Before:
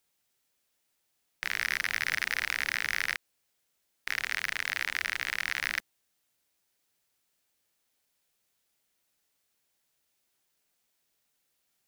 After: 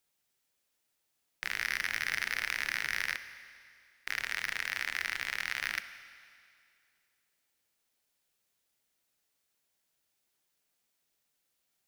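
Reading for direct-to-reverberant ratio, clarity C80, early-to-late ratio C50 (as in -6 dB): 11.0 dB, 13.0 dB, 12.0 dB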